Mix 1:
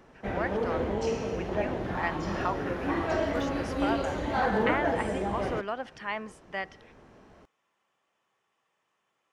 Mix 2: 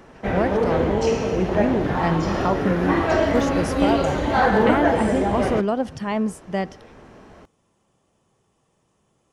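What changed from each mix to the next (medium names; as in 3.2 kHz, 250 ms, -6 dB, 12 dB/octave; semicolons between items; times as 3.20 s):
speech: remove band-pass filter 1.9 kHz, Q 1.2; background +9.0 dB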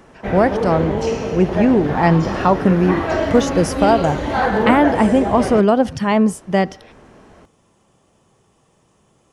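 speech +8.5 dB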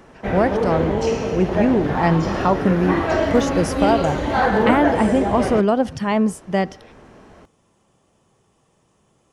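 speech -3.5 dB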